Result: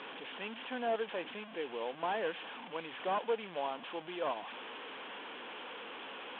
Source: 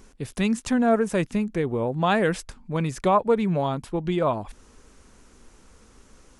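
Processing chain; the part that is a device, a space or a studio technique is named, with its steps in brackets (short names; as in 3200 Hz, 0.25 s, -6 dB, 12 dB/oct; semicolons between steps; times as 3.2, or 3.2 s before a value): digital answering machine (BPF 360–3300 Hz; delta modulation 16 kbps, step -30 dBFS; speaker cabinet 370–4000 Hz, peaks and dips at 380 Hz -6 dB, 610 Hz -5 dB, 1300 Hz -6 dB, 2000 Hz -6 dB, 3300 Hz +8 dB); gain -6.5 dB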